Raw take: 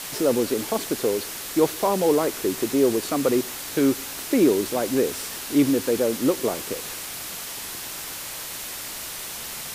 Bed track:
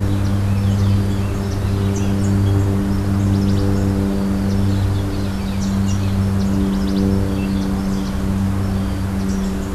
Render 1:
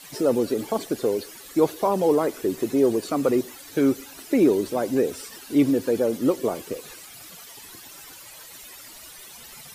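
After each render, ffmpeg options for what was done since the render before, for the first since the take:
-af "afftdn=nr=14:nf=-34"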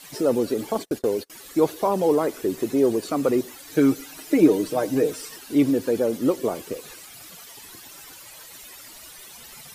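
-filter_complex "[0:a]asettb=1/sr,asplit=3[s0][s1][s2];[s0]atrim=end=0.754[s3];[s1]atrim=start=0.75:end=1.3,asetpts=PTS-STARTPTS,afade=t=in:d=0.004:c=qsin,afade=t=out:st=0.546:d=0.004:c=qsin,agate=range=0.0224:threshold=0.0178:ratio=16:release=100:detection=peak[s4];[s2]atrim=start=1.296[s5];[s3][s4]acrossfade=d=0.004:c1=hsin:c2=qsin[s6];[s6][s5]acrossfade=d=0.004:c1=qsin:c2=hsin,asettb=1/sr,asplit=3[s7][s8][s9];[s7]atrim=end=3.694[s10];[s8]atrim=start=3.69:end=5.36,asetpts=PTS-STARTPTS,afade=t=in:d=0.004:c=qsin,afade=t=out:st=1.666:d=0.004:c=qsin,aecho=1:1:6.5:0.65,atrim=end_sample=73647[s11];[s9]atrim=start=5.356[s12];[s10][s11]acrossfade=d=0.004:c1=hsin:c2=qsin[s13];[s13][s12]acrossfade=d=0.004:c1=qsin:c2=hsin"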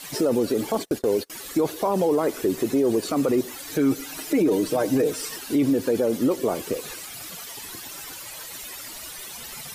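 -filter_complex "[0:a]asplit=2[s0][s1];[s1]acompressor=threshold=0.0447:ratio=6,volume=0.944[s2];[s0][s2]amix=inputs=2:normalize=0,alimiter=limit=0.211:level=0:latency=1:release=19"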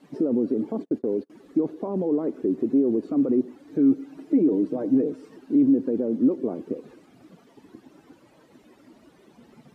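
-filter_complex "[0:a]asplit=2[s0][s1];[s1]acrusher=bits=5:mode=log:mix=0:aa=0.000001,volume=0.447[s2];[s0][s2]amix=inputs=2:normalize=0,bandpass=f=260:t=q:w=2.1:csg=0"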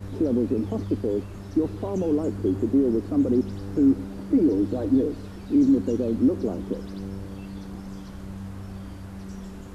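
-filter_complex "[1:a]volume=0.126[s0];[0:a][s0]amix=inputs=2:normalize=0"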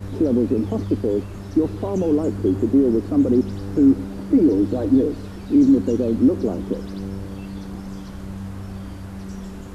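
-af "volume=1.68"

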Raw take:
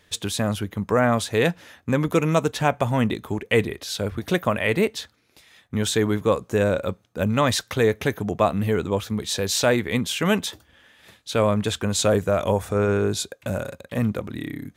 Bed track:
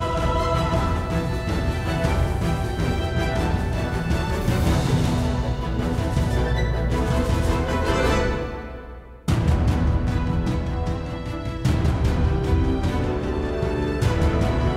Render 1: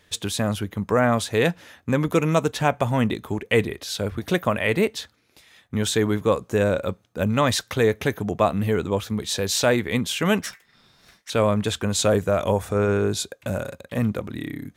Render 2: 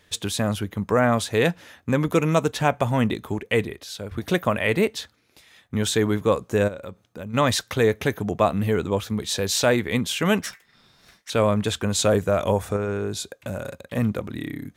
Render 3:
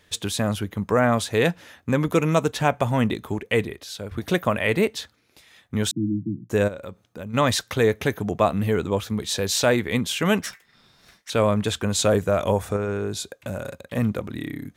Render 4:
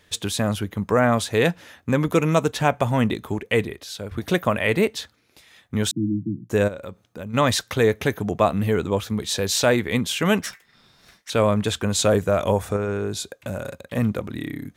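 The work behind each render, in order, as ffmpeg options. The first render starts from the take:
-filter_complex "[0:a]asettb=1/sr,asplit=3[s0][s1][s2];[s0]atrim=end=10.424[s3];[s1]atrim=start=10.42:end=11.3,asetpts=PTS-STARTPTS,afade=t=in:d=0.004:c=qsin,afade=t=out:st=0.876:d=0.004:c=qsin,aeval=exprs='val(0)*sin(2*PI*1900*n/s)':c=same[s4];[s2]atrim=start=11.296[s5];[s3][s4]acrossfade=d=0.004:c1=hsin:c2=qsin[s6];[s6][s5]acrossfade=d=0.004:c1=qsin:c2=hsin"
-filter_complex "[0:a]asplit=3[s0][s1][s2];[s0]afade=t=out:st=6.67:d=0.02[s3];[s1]acompressor=threshold=0.0178:ratio=3:attack=3.2:release=140:knee=1:detection=peak,afade=t=in:st=6.67:d=0.02,afade=t=out:st=7.33:d=0.02[s4];[s2]afade=t=in:st=7.33:d=0.02[s5];[s3][s4][s5]amix=inputs=3:normalize=0,asettb=1/sr,asplit=3[s6][s7][s8];[s6]atrim=end=12.764[s9];[s7]atrim=start=12.76:end=13.64,asetpts=PTS-STARTPTS,afade=t=in:d=0.004:c=qsin,afade=t=out:st=0.876:d=0.004:c=qsin,acompressor=threshold=0.0251:ratio=1.5:attack=3.2:release=140:knee=1:detection=peak[s10];[s8]atrim=start=13.636[s11];[s9][s10]acrossfade=d=0.004:c1=hsin:c2=qsin[s12];[s12][s11]acrossfade=d=0.004:c1=qsin:c2=hsin,asplit=2[s13][s14];[s13]atrim=end=4.11,asetpts=PTS-STARTPTS,afade=t=out:st=3.27:d=0.84:silence=0.354813[s15];[s14]atrim=start=4.11,asetpts=PTS-STARTPTS,afade=t=in:d=0.004:c=hsin:silence=0.354813[s16];[s15][s16]concat=n=2:v=0:a=1"
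-filter_complex "[0:a]asettb=1/sr,asplit=3[s0][s1][s2];[s0]atrim=end=5.914[s3];[s1]atrim=start=5.91:end=6.5,asetpts=PTS-STARTPTS,afade=t=in:d=0.004:c=qsin,afade=t=out:st=0.586:d=0.004:c=qsin,asuperpass=centerf=190:order=20:qfactor=0.81[s4];[s2]atrim=start=6.496[s5];[s3][s4]acrossfade=d=0.004:c1=hsin:c2=qsin[s6];[s6][s5]acrossfade=d=0.004:c1=qsin:c2=hsin"
-af "volume=1.12"

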